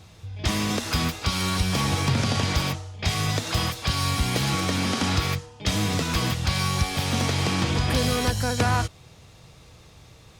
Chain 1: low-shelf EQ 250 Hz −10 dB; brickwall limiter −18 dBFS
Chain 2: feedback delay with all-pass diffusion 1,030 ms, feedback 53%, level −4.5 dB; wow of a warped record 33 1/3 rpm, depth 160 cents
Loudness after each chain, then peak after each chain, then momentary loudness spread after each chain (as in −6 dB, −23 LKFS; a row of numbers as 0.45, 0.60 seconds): −28.0, −23.5 LKFS; −18.0, −8.5 dBFS; 4, 5 LU